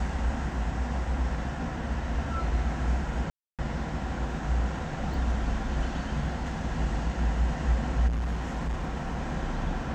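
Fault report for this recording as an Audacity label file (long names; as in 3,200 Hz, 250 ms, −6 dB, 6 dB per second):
3.300000	3.590000	drop-out 287 ms
5.140000	5.140000	drop-out 2 ms
8.070000	9.200000	clipping −26 dBFS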